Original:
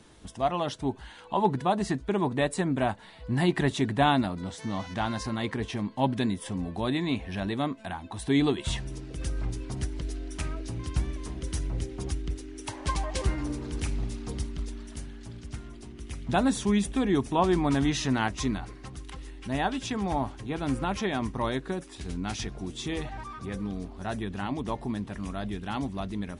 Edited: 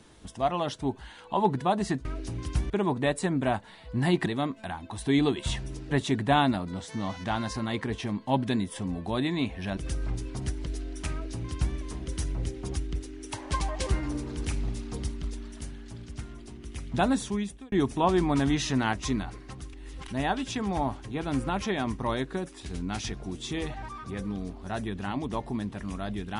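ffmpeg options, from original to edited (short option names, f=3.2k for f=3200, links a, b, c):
-filter_complex "[0:a]asplit=9[a][b][c][d][e][f][g][h][i];[a]atrim=end=2.052[j];[b]atrim=start=10.458:end=11.112[k];[c]atrim=start=2.048:end=3.612[l];[d]atrim=start=7.468:end=9.122[m];[e]atrim=start=3.608:end=7.472[n];[f]atrim=start=9.118:end=17.07,asetpts=PTS-STARTPTS,afade=t=out:st=7.282:d=0.67[o];[g]atrim=start=17.07:end=19.082,asetpts=PTS-STARTPTS,afade=t=in:d=0.004:c=hsin[p];[h]atrim=start=19.078:end=19.432,asetpts=PTS-STARTPTS,areverse[q];[i]atrim=start=19.428[r];[j][k]acrossfade=d=0.004:c1=hsin:c2=hsin[s];[s][l]acrossfade=d=0.004:c1=hsin:c2=hsin[t];[t][m]acrossfade=d=0.004:c1=hsin:c2=hsin[u];[u][n]acrossfade=d=0.004:c1=hsin:c2=hsin[v];[o][p]concat=n=2:v=0:a=1[w];[v][w]acrossfade=d=0.004:c1=hsin:c2=hsin[x];[x][q]acrossfade=d=0.004:c1=hsin:c2=hsin[y];[y][r]acrossfade=d=0.004:c1=hsin:c2=hsin"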